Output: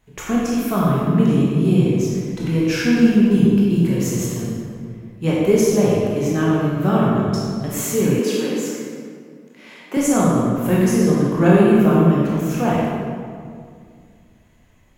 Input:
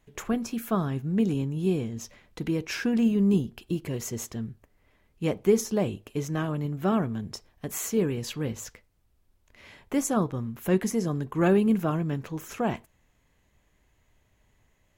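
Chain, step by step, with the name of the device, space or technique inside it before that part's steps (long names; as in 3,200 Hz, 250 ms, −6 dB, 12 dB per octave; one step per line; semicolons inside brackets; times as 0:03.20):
stairwell (convolution reverb RT60 2.2 s, pre-delay 18 ms, DRR −6 dB)
0:08.19–0:09.97: Butterworth high-pass 200 Hz 36 dB per octave
level +3 dB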